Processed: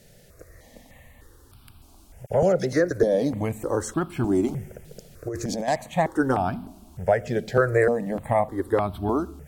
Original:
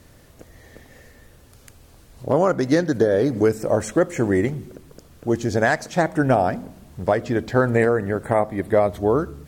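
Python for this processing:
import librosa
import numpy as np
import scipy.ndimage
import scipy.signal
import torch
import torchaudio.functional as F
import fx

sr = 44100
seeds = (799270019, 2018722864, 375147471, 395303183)

y = fx.dispersion(x, sr, late='lows', ms=42.0, hz=2500.0, at=(2.26, 2.91))
y = fx.over_compress(y, sr, threshold_db=-24.0, ratio=-1.0, at=(4.46, 5.68))
y = fx.phaser_held(y, sr, hz=3.3, low_hz=290.0, high_hz=1900.0)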